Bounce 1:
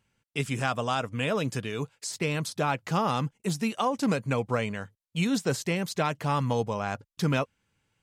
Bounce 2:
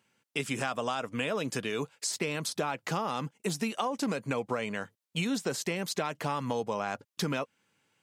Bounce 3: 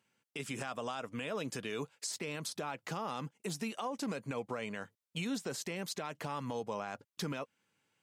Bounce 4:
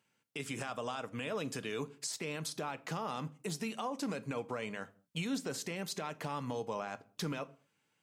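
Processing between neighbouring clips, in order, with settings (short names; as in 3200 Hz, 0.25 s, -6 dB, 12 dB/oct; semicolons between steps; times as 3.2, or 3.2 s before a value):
HPF 210 Hz 12 dB/oct; in parallel at -2 dB: limiter -20 dBFS, peak gain reduction 8 dB; on the sum: compressor, threshold -26 dBFS, peak gain reduction 8 dB; gain -1.5 dB
limiter -22 dBFS, peak gain reduction 6.5 dB; gain -5.5 dB
reverb, pre-delay 7 ms, DRR 14 dB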